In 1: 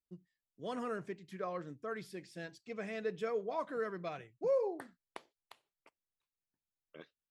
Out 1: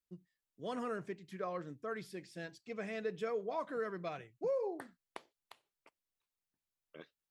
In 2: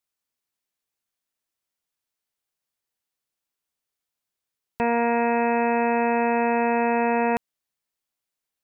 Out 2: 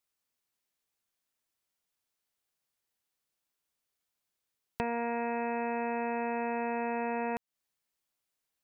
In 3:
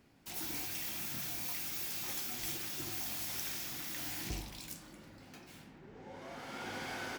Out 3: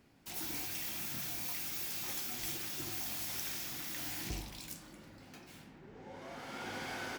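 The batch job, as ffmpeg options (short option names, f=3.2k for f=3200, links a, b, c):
-af "acompressor=threshold=-32dB:ratio=4"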